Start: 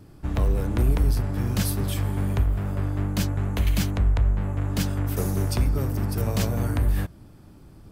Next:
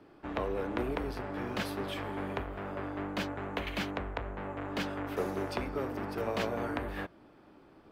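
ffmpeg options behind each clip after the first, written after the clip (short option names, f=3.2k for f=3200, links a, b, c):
-filter_complex "[0:a]acrossover=split=280 3600:gain=0.0794 1 0.0891[a][b][c];[a][b][c]amix=inputs=3:normalize=0"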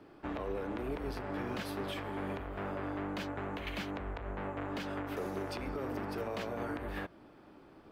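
-af "alimiter=level_in=5.5dB:limit=-24dB:level=0:latency=1:release=134,volume=-5.5dB,volume=1dB"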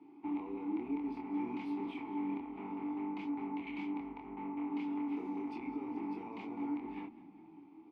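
-filter_complex "[0:a]asplit=3[a][b][c];[a]bandpass=f=300:t=q:w=8,volume=0dB[d];[b]bandpass=f=870:t=q:w=8,volume=-6dB[e];[c]bandpass=f=2.24k:t=q:w=8,volume=-9dB[f];[d][e][f]amix=inputs=3:normalize=0,asplit=2[g][h];[h]adelay=25,volume=-3.5dB[i];[g][i]amix=inputs=2:normalize=0,asplit=5[j][k][l][m][n];[k]adelay=203,afreqshift=-31,volume=-18.5dB[o];[l]adelay=406,afreqshift=-62,volume=-24dB[p];[m]adelay=609,afreqshift=-93,volume=-29.5dB[q];[n]adelay=812,afreqshift=-124,volume=-35dB[r];[j][o][p][q][r]amix=inputs=5:normalize=0,volume=6dB"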